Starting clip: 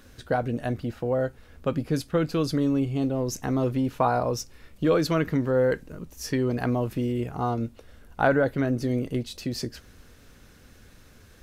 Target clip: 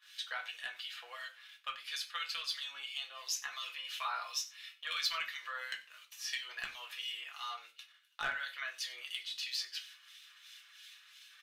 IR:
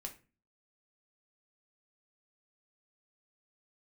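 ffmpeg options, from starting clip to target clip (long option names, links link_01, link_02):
-filter_complex "[0:a]highpass=frequency=1300:width=0.5412,highpass=frequency=1300:width=1.3066,agate=range=-17dB:threshold=-59dB:ratio=16:detection=peak,equalizer=frequency=3300:width_type=o:width=1:gain=15,aecho=1:1:5.9:0.41,acompressor=threshold=-43dB:ratio=1.5,volume=25dB,asoftclip=hard,volume=-25dB,acrossover=split=2000[link_01][link_02];[link_01]aeval=exprs='val(0)*(1-0.7/2+0.7/2*cos(2*PI*2.9*n/s))':channel_layout=same[link_03];[link_02]aeval=exprs='val(0)*(1-0.7/2-0.7/2*cos(2*PI*2.9*n/s))':channel_layout=same[link_04];[link_03][link_04]amix=inputs=2:normalize=0,aecho=1:1:93:0.0944[link_05];[1:a]atrim=start_sample=2205,afade=type=out:start_time=0.17:duration=0.01,atrim=end_sample=7938[link_06];[link_05][link_06]afir=irnorm=-1:irlink=0,volume=5.5dB"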